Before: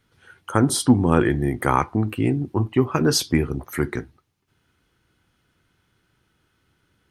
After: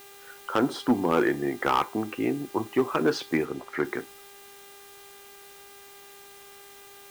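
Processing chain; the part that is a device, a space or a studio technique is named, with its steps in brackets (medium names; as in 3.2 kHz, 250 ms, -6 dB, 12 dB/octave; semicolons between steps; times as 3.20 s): aircraft radio (band-pass 350–2400 Hz; hard clipper -14.5 dBFS, distortion -12 dB; mains buzz 400 Hz, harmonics 10, -52 dBFS -4 dB/octave; white noise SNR 22 dB); 3.45–3.85 s: treble shelf 8.7 kHz -8.5 dB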